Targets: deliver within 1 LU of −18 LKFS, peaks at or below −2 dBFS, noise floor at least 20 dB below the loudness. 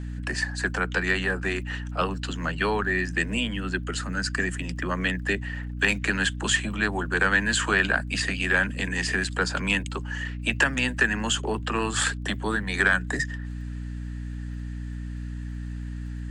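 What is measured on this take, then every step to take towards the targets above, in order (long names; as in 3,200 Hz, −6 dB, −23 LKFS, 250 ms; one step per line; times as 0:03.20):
crackle rate 22 per second; mains hum 60 Hz; hum harmonics up to 300 Hz; level of the hum −31 dBFS; integrated loudness −26.5 LKFS; sample peak −8.0 dBFS; target loudness −18.0 LKFS
→ click removal
mains-hum notches 60/120/180/240/300 Hz
level +8.5 dB
brickwall limiter −2 dBFS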